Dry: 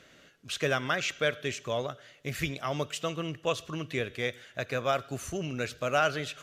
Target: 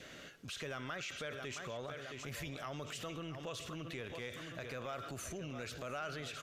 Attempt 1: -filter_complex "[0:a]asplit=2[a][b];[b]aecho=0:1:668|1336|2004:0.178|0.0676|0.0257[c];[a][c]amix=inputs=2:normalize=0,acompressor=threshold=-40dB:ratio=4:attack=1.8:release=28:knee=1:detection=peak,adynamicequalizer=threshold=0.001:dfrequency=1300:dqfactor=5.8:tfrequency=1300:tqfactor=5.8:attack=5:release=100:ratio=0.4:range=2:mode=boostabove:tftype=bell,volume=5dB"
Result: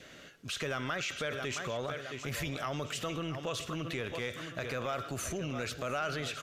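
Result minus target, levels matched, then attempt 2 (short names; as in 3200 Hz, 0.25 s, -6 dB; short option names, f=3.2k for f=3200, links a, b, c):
compressor: peak gain reduction -7.5 dB
-filter_complex "[0:a]asplit=2[a][b];[b]aecho=0:1:668|1336|2004:0.178|0.0676|0.0257[c];[a][c]amix=inputs=2:normalize=0,acompressor=threshold=-50dB:ratio=4:attack=1.8:release=28:knee=1:detection=peak,adynamicequalizer=threshold=0.001:dfrequency=1300:dqfactor=5.8:tfrequency=1300:tqfactor=5.8:attack=5:release=100:ratio=0.4:range=2:mode=boostabove:tftype=bell,volume=5dB"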